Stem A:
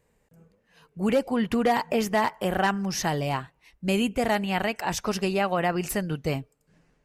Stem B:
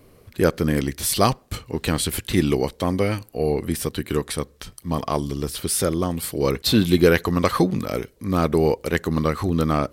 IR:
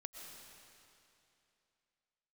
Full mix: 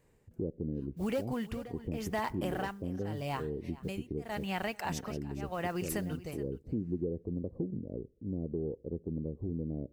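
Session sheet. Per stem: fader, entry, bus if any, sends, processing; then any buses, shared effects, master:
−1.5 dB, 0.00 s, no send, echo send −21 dB, noise that follows the level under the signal 26 dB; amplitude tremolo 0.85 Hz, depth 99%
−10.0 dB, 0.00 s, no send, no echo send, inverse Chebyshev low-pass filter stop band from 1,200 Hz, stop band 50 dB; downward expander −45 dBFS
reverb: not used
echo: single-tap delay 424 ms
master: downward compressor 2.5 to 1, threshold −34 dBFS, peak gain reduction 9.5 dB

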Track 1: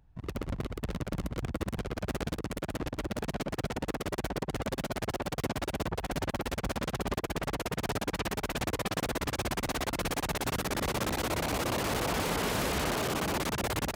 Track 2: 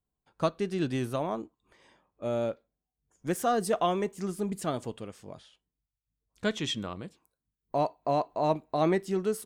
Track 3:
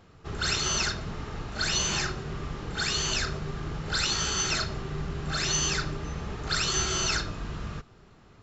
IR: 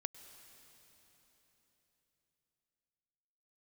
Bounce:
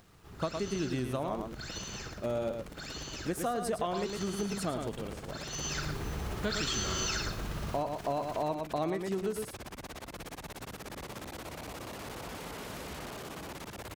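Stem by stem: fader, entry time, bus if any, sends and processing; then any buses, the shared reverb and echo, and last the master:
−12.0 dB, 0.15 s, no send, echo send −10.5 dB, no processing
−0.5 dB, 0.00 s, no send, echo send −7.5 dB, no processing
0:05.46 −17.5 dB → 0:05.94 −4.5 dB, 0.00 s, send −10 dB, echo send −5 dB, upward compression, threshold −36 dBFS; bit reduction 8 bits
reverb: on, RT60 3.9 s, pre-delay 95 ms
echo: single-tap delay 108 ms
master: downward compressor 6 to 1, threshold −29 dBFS, peak gain reduction 8 dB

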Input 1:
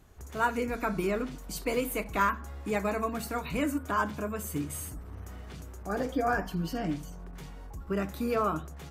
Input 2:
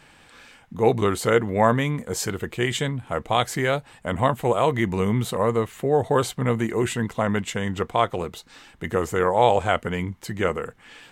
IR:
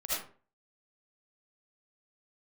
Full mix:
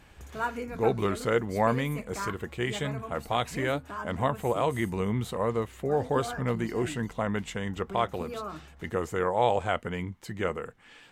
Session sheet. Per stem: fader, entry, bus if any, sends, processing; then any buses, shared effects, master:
+1.0 dB, 0.00 s, no send, automatic ducking −10 dB, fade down 1.05 s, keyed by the second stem
−6.5 dB, 0.00 s, no send, de-essing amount 55%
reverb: not used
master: high-shelf EQ 7,800 Hz −4 dB

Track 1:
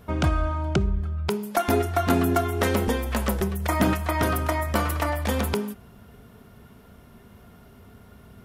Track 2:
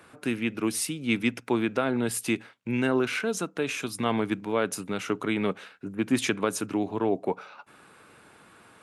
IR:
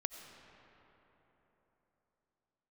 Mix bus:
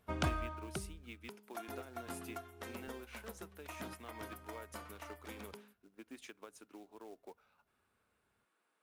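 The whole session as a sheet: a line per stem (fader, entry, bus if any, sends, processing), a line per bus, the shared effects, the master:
−3.5 dB, 0.00 s, no send, low-shelf EQ 460 Hz −7 dB; automatic ducking −13 dB, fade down 1.20 s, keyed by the second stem
−12.5 dB, 0.00 s, no send, high-pass filter 310 Hz 12 dB per octave; downward compressor 2.5 to 1, threshold −31 dBFS, peak gain reduction 7.5 dB; floating-point word with a short mantissa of 2 bits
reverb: not used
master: expander for the loud parts 1.5 to 1, over −57 dBFS

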